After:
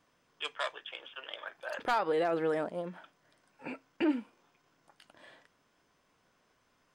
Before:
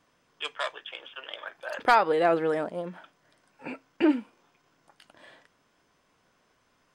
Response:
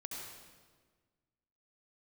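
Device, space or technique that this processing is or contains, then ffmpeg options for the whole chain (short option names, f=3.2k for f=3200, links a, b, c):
clipper into limiter: -af "asoftclip=type=hard:threshold=-12dB,alimiter=limit=-17.5dB:level=0:latency=1:release=81,volume=-3.5dB"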